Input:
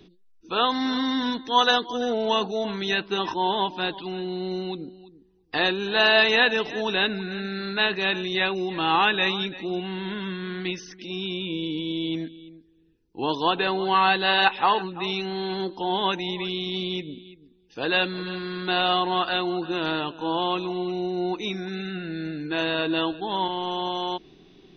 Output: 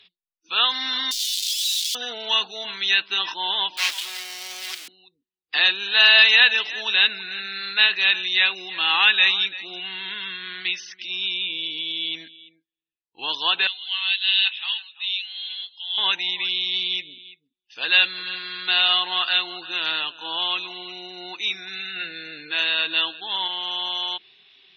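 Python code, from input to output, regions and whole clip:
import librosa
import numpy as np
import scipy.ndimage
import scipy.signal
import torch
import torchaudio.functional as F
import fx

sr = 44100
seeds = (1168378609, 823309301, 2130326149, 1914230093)

y = fx.chain(x, sr, fx.clip_1bit(),
    fx.cheby2_bandstop(low_hz=150.0, high_hz=820.0, order=4, stop_db=80),
    fx.env_flatten(amount_pct=50), at=(1.11, 1.95))
y = fx.chain(y, sr, fx.crossing_spikes(level_db=-22.0),
    fx.highpass(hz=470.0, slope=12),
    fx.doppler_dist(depth_ms=0.4), at=(3.77, 4.88))
y = fx.chain(y, sr, fx.bandpass_q(hz=3300.0, q=3.8),
    fx.doubler(ms=16.0, db=-14.0), at=(13.67, 15.98))
y = fx.chain(y, sr, fx.peak_eq(hz=480.0, db=9.0, octaves=0.32),
    fx.hum_notches(base_hz=60, count=4),
    fx.env_flatten(amount_pct=100), at=(21.96, 22.51))
y = fx.peak_eq(y, sr, hz=2900.0, db=14.0, octaves=2.3)
y = fx.noise_reduce_blind(y, sr, reduce_db=22)
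y = fx.tilt_shelf(y, sr, db=-8.5, hz=650.0)
y = y * librosa.db_to_amplitude(-12.5)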